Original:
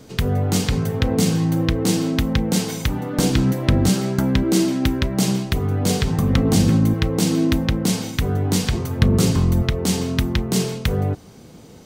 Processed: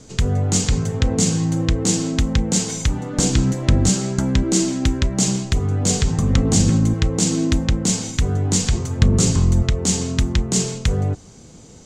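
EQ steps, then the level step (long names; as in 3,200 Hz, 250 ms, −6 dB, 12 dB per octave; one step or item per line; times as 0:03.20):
low-pass with resonance 7,200 Hz, resonance Q 4.7
low-shelf EQ 72 Hz +11 dB
−2.5 dB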